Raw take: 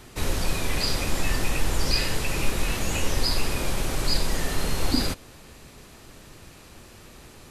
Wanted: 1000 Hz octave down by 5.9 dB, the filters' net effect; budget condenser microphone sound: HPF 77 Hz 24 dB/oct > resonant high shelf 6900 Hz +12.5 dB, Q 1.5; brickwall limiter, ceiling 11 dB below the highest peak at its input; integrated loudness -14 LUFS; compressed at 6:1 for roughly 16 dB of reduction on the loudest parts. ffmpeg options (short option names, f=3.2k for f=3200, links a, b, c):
-af "equalizer=f=1k:t=o:g=-7.5,acompressor=threshold=-34dB:ratio=6,alimiter=level_in=10.5dB:limit=-24dB:level=0:latency=1,volume=-10.5dB,highpass=f=77:w=0.5412,highpass=f=77:w=1.3066,highshelf=f=6.9k:t=q:w=1.5:g=12.5,volume=26.5dB"